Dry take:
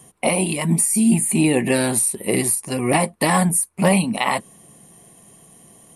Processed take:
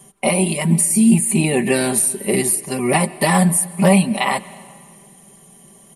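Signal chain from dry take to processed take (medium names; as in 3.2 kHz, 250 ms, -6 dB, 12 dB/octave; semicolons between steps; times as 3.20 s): comb 5.1 ms, depth 68%; reverberation RT60 2.0 s, pre-delay 113 ms, DRR 19 dB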